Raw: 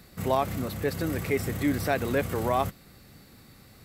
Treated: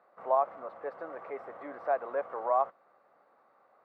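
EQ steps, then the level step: Chebyshev band-pass 590–1200 Hz, order 2; 0.0 dB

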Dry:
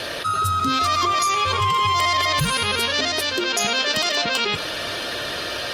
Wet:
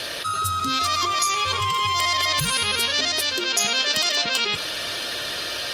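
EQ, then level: high shelf 2400 Hz +9 dB; -5.5 dB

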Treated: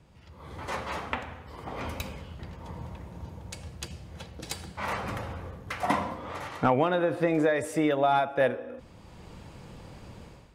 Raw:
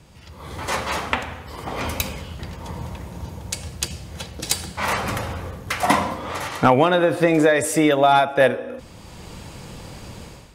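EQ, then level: high shelf 3700 Hz -10 dB; -8.0 dB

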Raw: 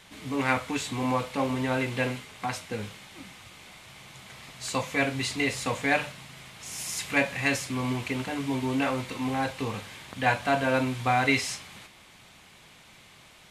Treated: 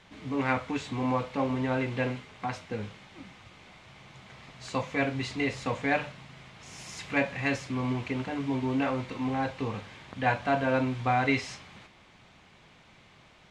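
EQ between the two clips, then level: tape spacing loss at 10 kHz 21 dB; bell 6200 Hz +3.5 dB 0.92 oct; 0.0 dB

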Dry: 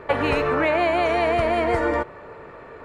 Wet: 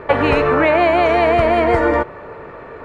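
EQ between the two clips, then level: high shelf 5300 Hz -10.5 dB; +7.0 dB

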